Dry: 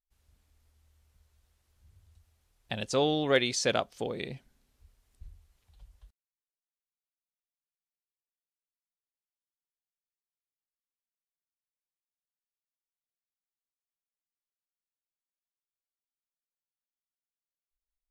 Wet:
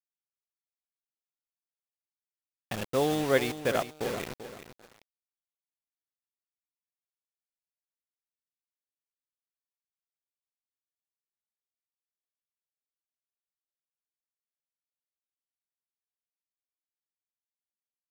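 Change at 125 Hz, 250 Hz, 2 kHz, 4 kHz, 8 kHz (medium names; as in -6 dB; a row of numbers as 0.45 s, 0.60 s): +0.5 dB, +0.5 dB, -1.0 dB, -6.0 dB, -5.0 dB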